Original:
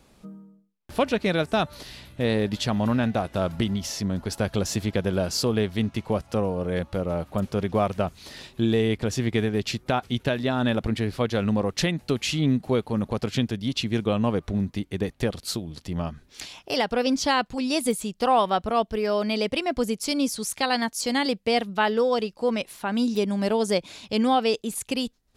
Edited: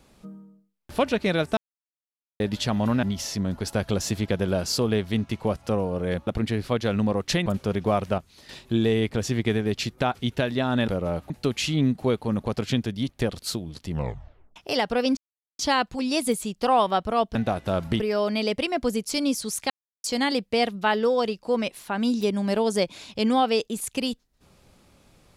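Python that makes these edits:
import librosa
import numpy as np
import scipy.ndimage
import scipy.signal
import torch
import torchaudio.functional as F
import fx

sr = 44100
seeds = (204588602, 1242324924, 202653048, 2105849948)

y = fx.edit(x, sr, fx.silence(start_s=1.57, length_s=0.83),
    fx.move(start_s=3.03, length_s=0.65, to_s=18.94),
    fx.swap(start_s=6.92, length_s=0.42, other_s=10.76, other_length_s=1.19),
    fx.clip_gain(start_s=8.06, length_s=0.31, db=-8.5),
    fx.cut(start_s=13.74, length_s=1.36),
    fx.tape_stop(start_s=15.91, length_s=0.66),
    fx.insert_silence(at_s=17.18, length_s=0.42),
    fx.silence(start_s=20.64, length_s=0.34), tone=tone)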